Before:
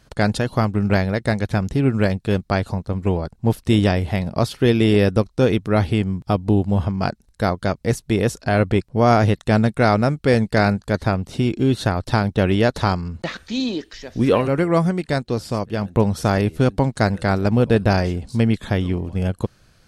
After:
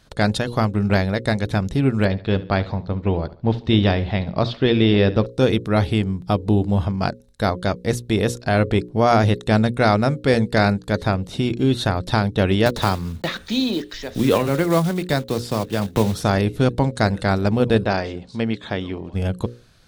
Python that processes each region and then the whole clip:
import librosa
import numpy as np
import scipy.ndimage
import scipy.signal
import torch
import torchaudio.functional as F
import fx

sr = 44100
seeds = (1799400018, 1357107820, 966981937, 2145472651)

y = fx.chain(x, sr, fx.lowpass(hz=4500.0, slope=24),
    fx.echo_feedback(ms=71, feedback_pct=37, wet_db=-17.5), at=(2.05, 5.26))
y = fx.chain(y, sr, fx.block_float(bits=5),
    fx.band_squash(depth_pct=40), at=(12.66, 16.23))
y = fx.chain(y, sr, fx.highpass(hz=290.0, slope=6),
    fx.air_absorb(metres=100.0), at=(17.85, 19.14))
y = fx.peak_eq(y, sr, hz=3700.0, db=6.5, octaves=0.27)
y = fx.hum_notches(y, sr, base_hz=60, count=9)